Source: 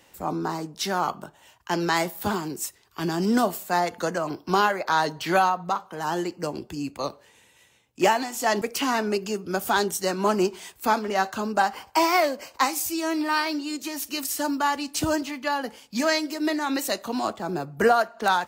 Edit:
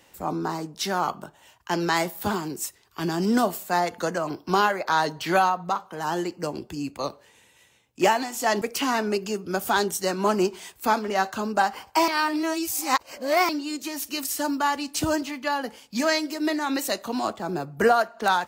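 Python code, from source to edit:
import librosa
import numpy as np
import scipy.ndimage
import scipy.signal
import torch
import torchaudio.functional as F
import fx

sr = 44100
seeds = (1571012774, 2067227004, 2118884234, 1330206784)

y = fx.edit(x, sr, fx.reverse_span(start_s=12.08, length_s=1.41), tone=tone)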